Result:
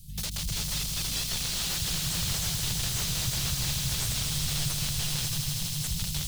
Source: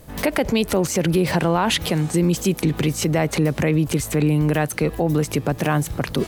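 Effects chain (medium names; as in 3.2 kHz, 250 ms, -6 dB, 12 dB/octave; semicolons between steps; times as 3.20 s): 0.75–1.40 s: formants replaced by sine waves; 2.82–3.51 s: hum notches 60/120/180/240/300 Hz; 5.25–5.84 s: compression 5:1, threshold -28 dBFS, peak gain reduction 12 dB; flange 0.35 Hz, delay 5.4 ms, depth 3.9 ms, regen +42%; wow and flutter 20 cents; integer overflow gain 24.5 dB; inverse Chebyshev band-stop 460–1200 Hz, stop band 70 dB; echo with a slow build-up 81 ms, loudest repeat 5, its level -9 dB; slew-rate limiter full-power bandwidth 170 Hz; trim +3.5 dB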